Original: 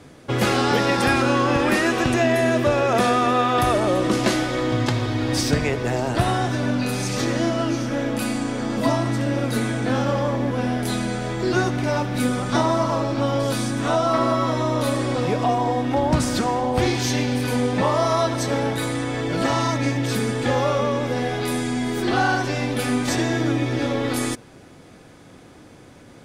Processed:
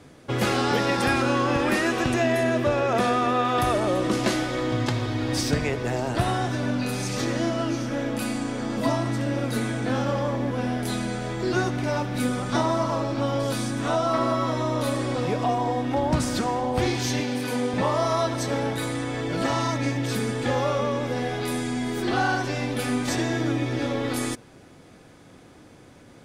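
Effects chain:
0:02.43–0:03.45: high-shelf EQ 5,700 Hz −5 dB
0:17.20–0:17.74: high-pass filter 170 Hz 12 dB per octave
level −3.5 dB

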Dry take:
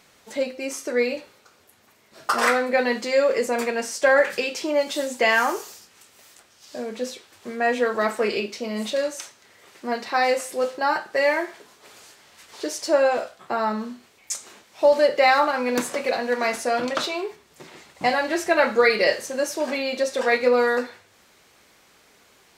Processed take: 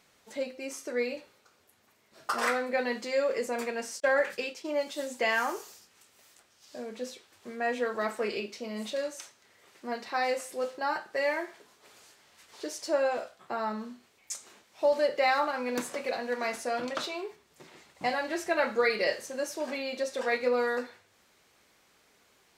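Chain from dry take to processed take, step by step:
0:04.00–0:05.01: downward expander −25 dBFS
level −8.5 dB

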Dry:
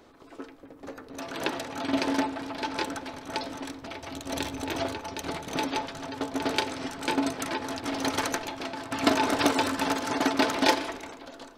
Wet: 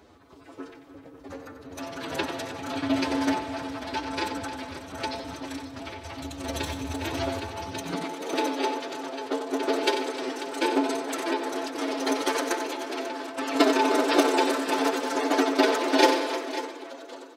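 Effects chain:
phase-vocoder stretch with locked phases 1.5×
multi-tap delay 92/192/307/542 ms −9.5/−19/−14/−13.5 dB
high-pass filter sweep 68 Hz → 370 Hz, 0:07.62–0:08.19

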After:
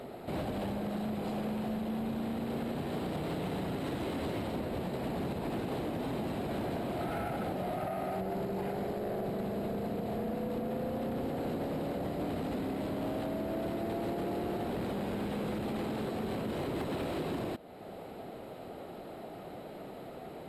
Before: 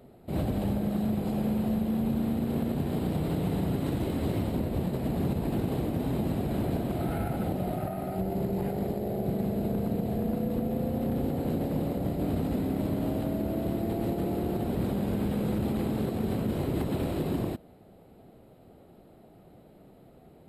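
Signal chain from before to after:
downward compressor 2 to 1, threshold −49 dBFS, peak gain reduction 13 dB
mid-hump overdrive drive 16 dB, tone 4,200 Hz, clips at −31.5 dBFS
level +5.5 dB

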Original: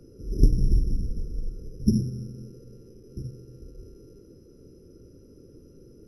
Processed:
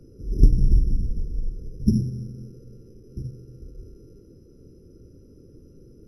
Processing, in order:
low-shelf EQ 270 Hz +7 dB
level −3 dB

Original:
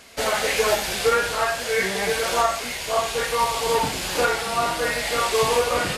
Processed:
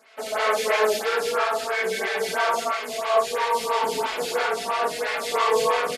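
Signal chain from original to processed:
high-pass filter 570 Hz 6 dB per octave
high-shelf EQ 5,200 Hz −8.5 dB
comb filter 4.6 ms
reverb whose tail is shaped and stops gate 240 ms rising, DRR −5 dB
phaser with staggered stages 3 Hz
level −3.5 dB

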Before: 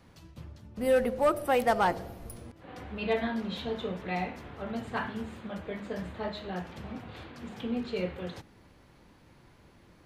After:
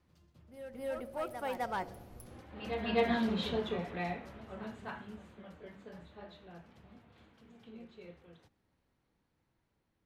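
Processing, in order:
source passing by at 0:03.30, 15 m/s, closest 6.4 metres
tape wow and flutter 20 cents
backwards echo 257 ms −8.5 dB
level +1 dB

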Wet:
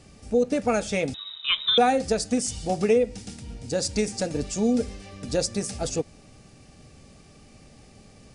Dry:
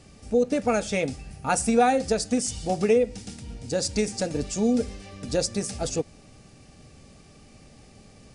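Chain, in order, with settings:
0:01.14–0:01.78: voice inversion scrambler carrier 3,800 Hz

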